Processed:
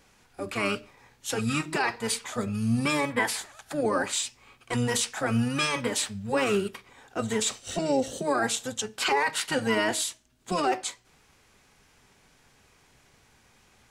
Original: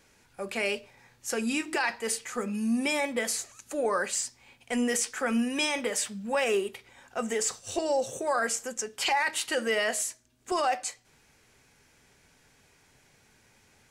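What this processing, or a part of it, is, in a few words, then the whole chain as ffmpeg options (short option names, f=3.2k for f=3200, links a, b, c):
octave pedal: -filter_complex "[0:a]asettb=1/sr,asplit=3[a][b][c];[a]atrim=end=3.104[d];[b]atrim=start=3.1:end=3.81,asetpts=PTS-STARTPTS,afade=t=in:d=0.004:c=qsin,afade=t=out:st=0.706:d=0.004:c=qsin,equalizer=f=250:t=o:w=0.67:g=-6,equalizer=f=1.6k:t=o:w=0.67:g=11,equalizer=f=6.3k:t=o:w=0.67:g=-6[e];[c]atrim=start=3.806[f];[d][e]acrossfade=d=0.004:c1=hsin:c2=qsin[g];[g][f]acrossfade=d=0.004:c1=qsin:c2=hsin,asplit=2[h][i];[i]asetrate=22050,aresample=44100,atempo=2,volume=-3dB[j];[h][j]amix=inputs=2:normalize=0"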